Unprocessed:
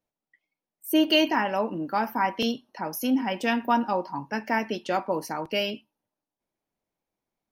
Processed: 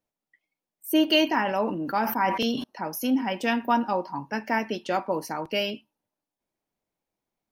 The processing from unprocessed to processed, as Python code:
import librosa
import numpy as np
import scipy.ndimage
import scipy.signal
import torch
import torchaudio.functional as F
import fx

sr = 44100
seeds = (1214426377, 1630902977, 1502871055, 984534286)

y = fx.sustainer(x, sr, db_per_s=55.0, at=(1.43, 2.64))